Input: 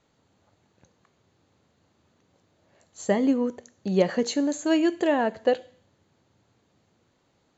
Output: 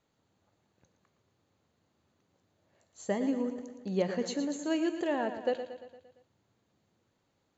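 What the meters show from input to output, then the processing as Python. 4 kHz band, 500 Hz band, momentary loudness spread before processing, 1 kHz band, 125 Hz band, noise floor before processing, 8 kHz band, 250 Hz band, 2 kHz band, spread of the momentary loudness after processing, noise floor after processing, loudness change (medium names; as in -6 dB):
-8.0 dB, -8.0 dB, 8 LU, -8.0 dB, -7.5 dB, -69 dBFS, no reading, -8.0 dB, -8.0 dB, 11 LU, -77 dBFS, -8.0 dB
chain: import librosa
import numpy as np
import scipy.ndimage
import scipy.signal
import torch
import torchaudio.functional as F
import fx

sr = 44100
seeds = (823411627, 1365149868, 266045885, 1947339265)

y = fx.echo_feedback(x, sr, ms=115, feedback_pct=56, wet_db=-10.0)
y = y * librosa.db_to_amplitude(-8.5)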